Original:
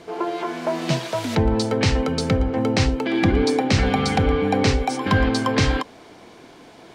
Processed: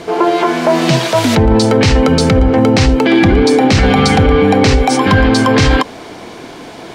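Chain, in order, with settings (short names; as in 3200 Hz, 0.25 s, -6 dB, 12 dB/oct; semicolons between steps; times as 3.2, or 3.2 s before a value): in parallel at -6 dB: sine folder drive 3 dB, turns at -6 dBFS; on the sum: maximiser +9 dB; gain -1 dB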